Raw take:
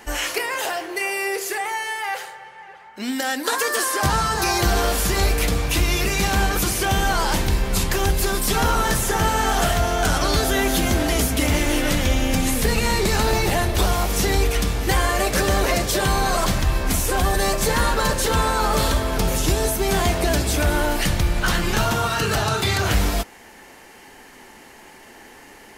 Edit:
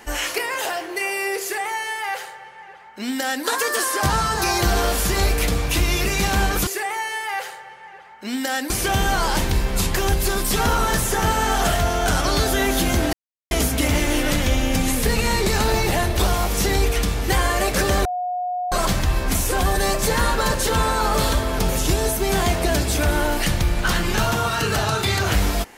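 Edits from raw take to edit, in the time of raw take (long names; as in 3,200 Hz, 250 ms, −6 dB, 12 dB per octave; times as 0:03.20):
0:01.42–0:03.45: duplicate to 0:06.67
0:11.10: splice in silence 0.38 s
0:15.64–0:16.31: beep over 722 Hz −22 dBFS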